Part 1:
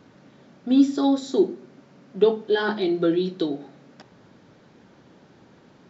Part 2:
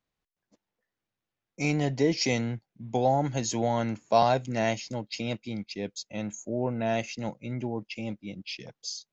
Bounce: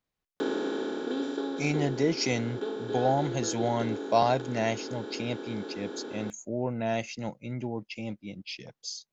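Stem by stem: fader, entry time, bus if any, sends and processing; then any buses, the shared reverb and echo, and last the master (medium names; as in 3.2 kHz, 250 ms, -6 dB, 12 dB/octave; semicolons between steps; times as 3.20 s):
-10.0 dB, 0.40 s, no send, spectral levelling over time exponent 0.2; high-pass 270 Hz 12 dB/octave; auto duck -10 dB, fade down 1.15 s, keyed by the second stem
-1.5 dB, 0.00 s, no send, none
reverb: none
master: none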